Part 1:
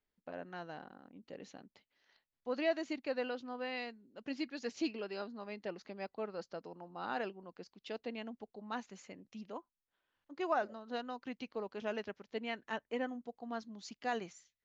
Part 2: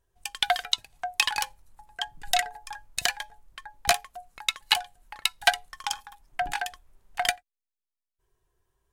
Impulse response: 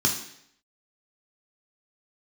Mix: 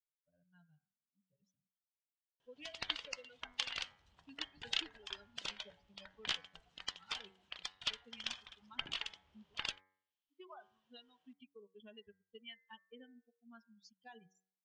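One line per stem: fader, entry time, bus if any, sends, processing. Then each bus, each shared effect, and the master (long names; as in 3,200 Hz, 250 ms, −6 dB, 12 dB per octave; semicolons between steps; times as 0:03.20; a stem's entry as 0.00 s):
−5.5 dB, 0.00 s, no send, spectral dynamics exaggerated over time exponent 3; downward compressor 4 to 1, threshold −48 dBFS, peak gain reduction 15 dB
−2.5 dB, 2.40 s, no send, downward compressor 2 to 1, threshold −34 dBFS, peak gain reduction 11 dB; gate on every frequency bin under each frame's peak −15 dB weak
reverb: not used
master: low-pass filter 5,600 Hz 24 dB per octave; parametric band 3,100 Hz +12.5 dB 0.49 octaves; hum removal 94.06 Hz, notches 24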